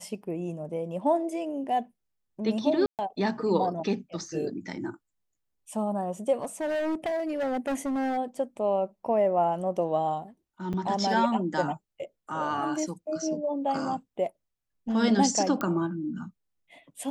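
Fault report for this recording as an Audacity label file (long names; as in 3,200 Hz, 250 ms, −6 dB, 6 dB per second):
2.860000	2.990000	drop-out 128 ms
6.330000	8.180000	clipping −26 dBFS
10.730000	10.740000	drop-out 6.6 ms
15.610000	15.610000	click −16 dBFS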